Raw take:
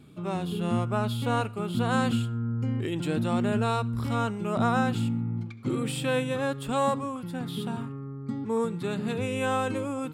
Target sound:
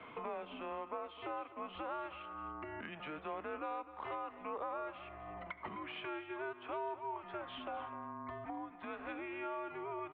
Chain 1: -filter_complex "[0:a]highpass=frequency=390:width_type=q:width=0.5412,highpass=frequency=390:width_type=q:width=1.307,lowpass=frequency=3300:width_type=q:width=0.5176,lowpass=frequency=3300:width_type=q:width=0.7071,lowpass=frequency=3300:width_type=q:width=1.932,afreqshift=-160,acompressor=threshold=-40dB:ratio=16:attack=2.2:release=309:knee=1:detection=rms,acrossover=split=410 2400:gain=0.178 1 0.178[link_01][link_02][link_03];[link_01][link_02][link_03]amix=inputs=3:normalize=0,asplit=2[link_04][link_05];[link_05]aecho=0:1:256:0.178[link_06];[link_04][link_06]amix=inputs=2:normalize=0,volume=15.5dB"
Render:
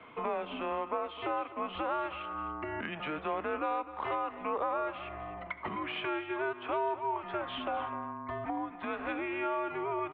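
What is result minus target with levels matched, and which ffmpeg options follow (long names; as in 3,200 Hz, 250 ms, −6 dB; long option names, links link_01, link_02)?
downward compressor: peak gain reduction −8.5 dB
-filter_complex "[0:a]highpass=frequency=390:width_type=q:width=0.5412,highpass=frequency=390:width_type=q:width=1.307,lowpass=frequency=3300:width_type=q:width=0.5176,lowpass=frequency=3300:width_type=q:width=0.7071,lowpass=frequency=3300:width_type=q:width=1.932,afreqshift=-160,acompressor=threshold=-49dB:ratio=16:attack=2.2:release=309:knee=1:detection=rms,acrossover=split=410 2400:gain=0.178 1 0.178[link_01][link_02][link_03];[link_01][link_02][link_03]amix=inputs=3:normalize=0,asplit=2[link_04][link_05];[link_05]aecho=0:1:256:0.178[link_06];[link_04][link_06]amix=inputs=2:normalize=0,volume=15.5dB"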